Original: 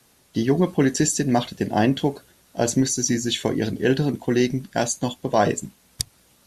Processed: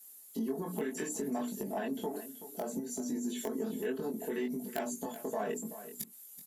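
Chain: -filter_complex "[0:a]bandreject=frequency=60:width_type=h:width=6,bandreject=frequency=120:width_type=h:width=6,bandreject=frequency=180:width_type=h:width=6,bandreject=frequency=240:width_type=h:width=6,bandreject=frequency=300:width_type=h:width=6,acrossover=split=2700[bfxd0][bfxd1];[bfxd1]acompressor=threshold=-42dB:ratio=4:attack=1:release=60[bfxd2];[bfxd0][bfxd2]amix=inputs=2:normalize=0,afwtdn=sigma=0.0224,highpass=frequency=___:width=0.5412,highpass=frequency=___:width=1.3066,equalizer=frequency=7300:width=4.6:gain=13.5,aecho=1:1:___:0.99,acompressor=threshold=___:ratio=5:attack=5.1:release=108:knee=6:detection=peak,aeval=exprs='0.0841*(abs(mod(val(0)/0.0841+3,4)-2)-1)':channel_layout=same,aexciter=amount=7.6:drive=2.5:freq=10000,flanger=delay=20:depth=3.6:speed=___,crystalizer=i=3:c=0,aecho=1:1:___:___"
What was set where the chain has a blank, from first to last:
220, 220, 4.6, -32dB, 0.64, 379, 0.224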